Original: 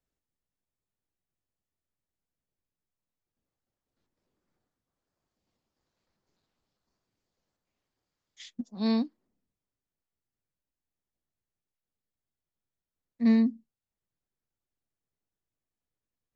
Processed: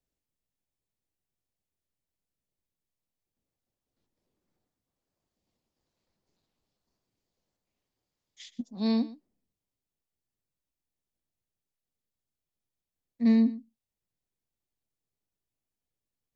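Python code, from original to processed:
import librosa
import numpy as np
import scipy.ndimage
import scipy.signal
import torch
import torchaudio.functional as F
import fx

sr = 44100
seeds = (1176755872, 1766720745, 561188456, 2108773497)

p1 = fx.peak_eq(x, sr, hz=1400.0, db=-5.5, octaves=0.96)
y = p1 + fx.echo_single(p1, sr, ms=120, db=-18.0, dry=0)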